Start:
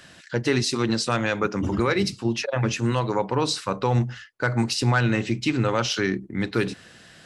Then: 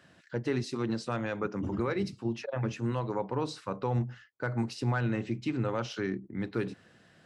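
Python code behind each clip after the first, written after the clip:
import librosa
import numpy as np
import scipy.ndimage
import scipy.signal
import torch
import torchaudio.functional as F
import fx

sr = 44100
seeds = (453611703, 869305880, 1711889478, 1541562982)

y = scipy.signal.sosfilt(scipy.signal.butter(2, 72.0, 'highpass', fs=sr, output='sos'), x)
y = fx.high_shelf(y, sr, hz=2100.0, db=-11.5)
y = y * librosa.db_to_amplitude(-7.5)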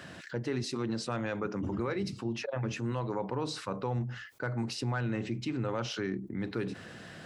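y = fx.env_flatten(x, sr, amount_pct=50)
y = y * librosa.db_to_amplitude(-4.5)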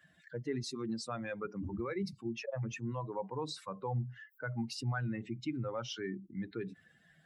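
y = fx.bin_expand(x, sr, power=2.0)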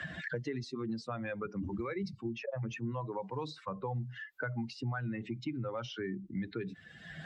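y = scipy.signal.sosfilt(scipy.signal.butter(2, 4700.0, 'lowpass', fs=sr, output='sos'), x)
y = fx.band_squash(y, sr, depth_pct=100)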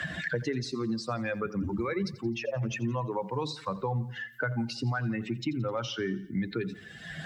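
y = fx.high_shelf(x, sr, hz=6200.0, db=10.0)
y = fx.echo_feedback(y, sr, ms=86, feedback_pct=52, wet_db=-18.0)
y = y * librosa.db_to_amplitude(6.0)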